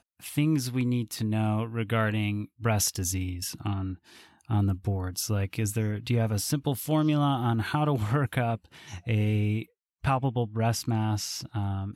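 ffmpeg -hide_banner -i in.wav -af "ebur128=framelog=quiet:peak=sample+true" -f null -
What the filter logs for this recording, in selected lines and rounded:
Integrated loudness:
  I:         -28.4 LUFS
  Threshold: -38.6 LUFS
Loudness range:
  LRA:         2.7 LU
  Threshold: -48.6 LUFS
  LRA low:   -30.0 LUFS
  LRA high:  -27.3 LUFS
Sample peak:
  Peak:      -13.4 dBFS
True peak:
  Peak:      -12.7 dBFS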